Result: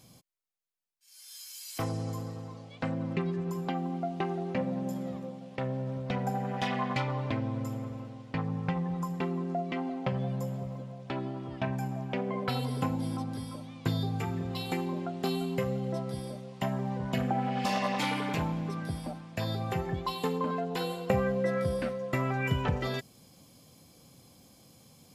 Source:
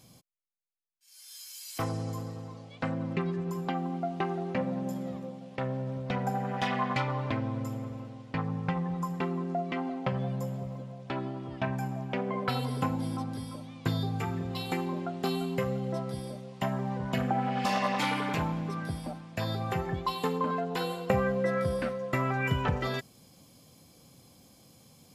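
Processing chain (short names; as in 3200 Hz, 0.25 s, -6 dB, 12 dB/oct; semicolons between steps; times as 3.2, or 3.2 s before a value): dynamic EQ 1300 Hz, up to -4 dB, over -44 dBFS, Q 1.2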